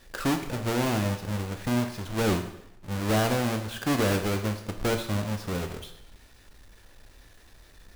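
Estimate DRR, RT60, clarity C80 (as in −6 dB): 5.5 dB, 0.80 s, 12.0 dB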